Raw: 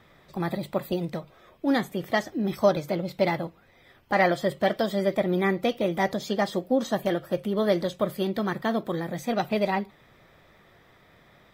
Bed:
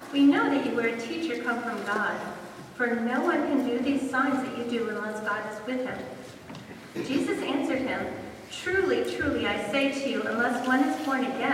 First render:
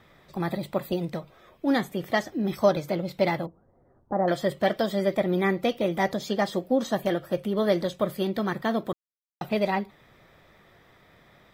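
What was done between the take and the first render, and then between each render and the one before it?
3.46–4.28 Gaussian blur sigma 8.8 samples; 8.93–9.41 mute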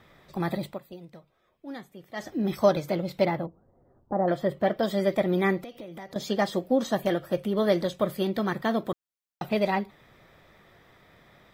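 0.65–2.29 dip -15.5 dB, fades 0.14 s; 3.25–4.83 bell 7600 Hz -12.5 dB 2.9 oct; 5.58–6.16 compressor 16:1, threshold -37 dBFS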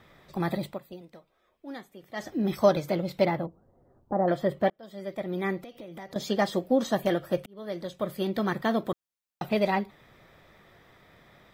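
1.01–2.02 bell 130 Hz -11.5 dB 0.82 oct; 4.7–6.12 fade in; 7.46–8.45 fade in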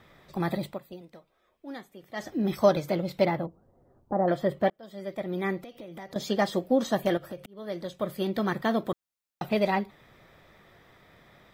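7.17–7.6 compressor 4:1, threshold -36 dBFS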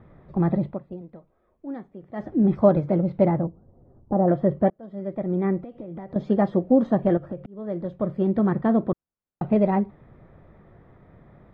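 LPF 1300 Hz 12 dB/oct; low shelf 370 Hz +11.5 dB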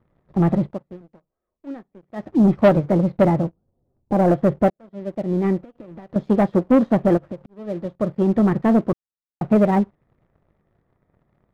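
sample leveller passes 2; upward expander 1.5:1, over -33 dBFS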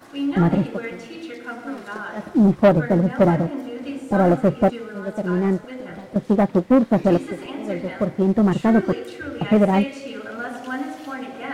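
add bed -4.5 dB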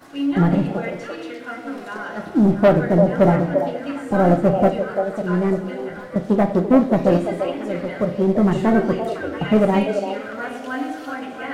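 on a send: delay with a stepping band-pass 0.341 s, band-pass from 590 Hz, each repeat 1.4 oct, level -3.5 dB; on the sum: shoebox room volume 85 m³, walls mixed, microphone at 0.3 m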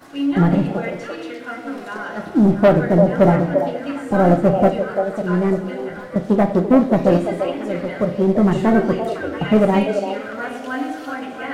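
gain +1.5 dB; limiter -3 dBFS, peak gain reduction 1 dB

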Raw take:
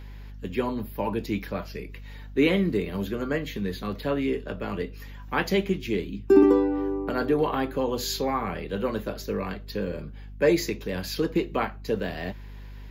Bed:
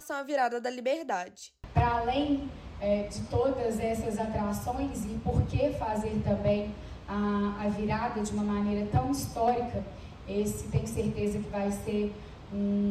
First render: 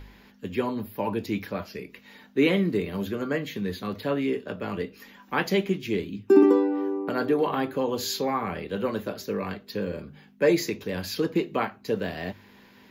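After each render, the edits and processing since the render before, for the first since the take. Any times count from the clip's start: de-hum 50 Hz, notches 3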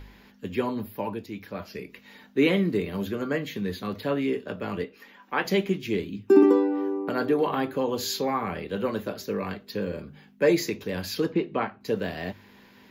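0.89–1.77 dip -8.5 dB, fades 0.38 s; 4.84–5.45 tone controls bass -11 dB, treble -8 dB; 11.32–11.81 air absorption 200 m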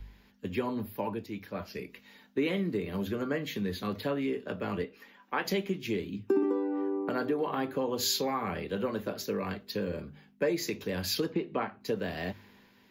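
compressor 4:1, threshold -28 dBFS, peak gain reduction 14 dB; three-band expander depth 40%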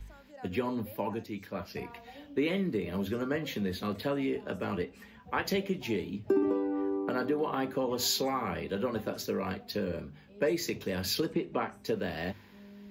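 add bed -22 dB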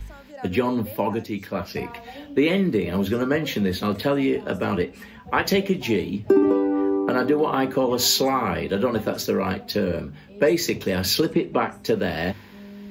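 gain +10 dB

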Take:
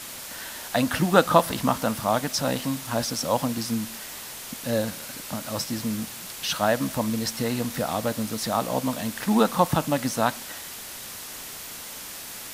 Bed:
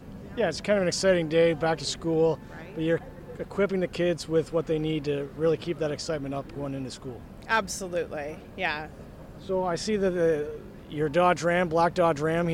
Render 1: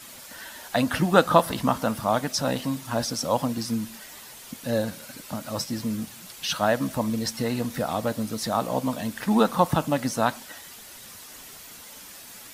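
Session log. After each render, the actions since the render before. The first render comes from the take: denoiser 8 dB, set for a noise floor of -39 dBFS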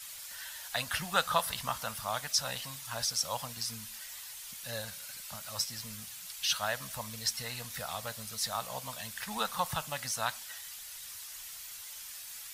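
passive tone stack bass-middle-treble 10-0-10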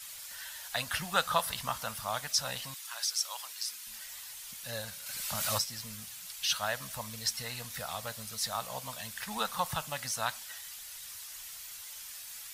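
2.74–3.87 HPF 1300 Hz; 5.06–5.66 backwards sustainer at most 23 dB/s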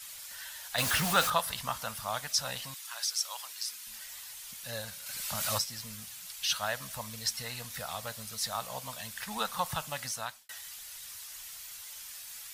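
0.78–1.3 zero-crossing step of -27 dBFS; 10.05–10.49 fade out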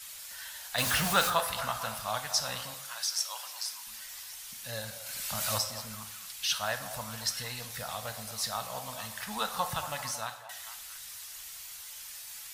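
delay with a stepping band-pass 0.226 s, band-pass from 710 Hz, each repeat 0.7 oct, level -9 dB; plate-style reverb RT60 0.79 s, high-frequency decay 0.7×, pre-delay 0 ms, DRR 8 dB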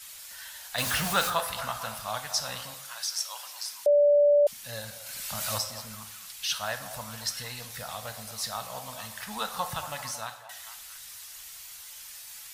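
3.86–4.47 bleep 582 Hz -16.5 dBFS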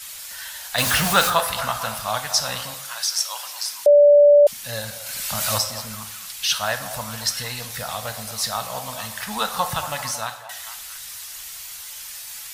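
gain +8.5 dB

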